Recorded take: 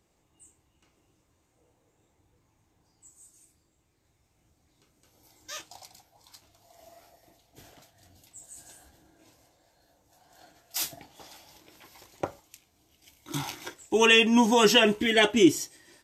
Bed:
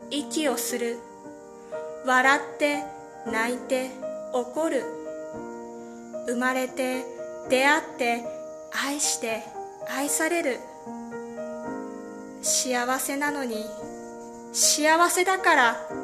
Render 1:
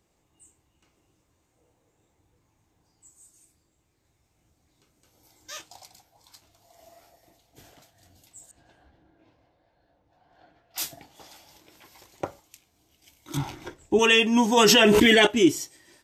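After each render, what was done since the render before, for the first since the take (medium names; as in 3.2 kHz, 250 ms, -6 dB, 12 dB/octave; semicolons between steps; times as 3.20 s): 8.51–10.78 s: distance through air 320 m; 13.37–13.99 s: tilt EQ -3 dB/octave; 14.57–15.27 s: level flattener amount 100%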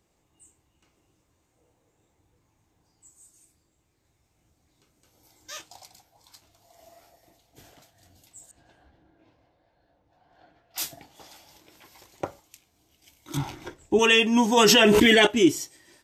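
no audible change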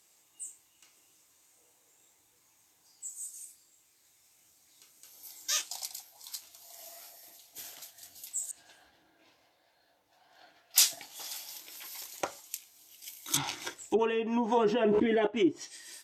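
low-pass that closes with the level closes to 540 Hz, closed at -15.5 dBFS; tilt EQ +4.5 dB/octave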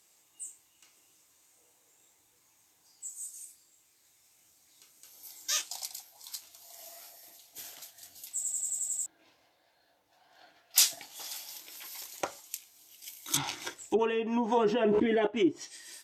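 8.34 s: stutter in place 0.09 s, 8 plays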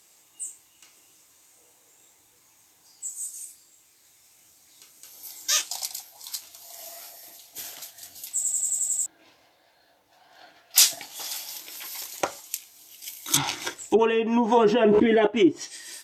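trim +7.5 dB; peak limiter -1 dBFS, peak gain reduction 2 dB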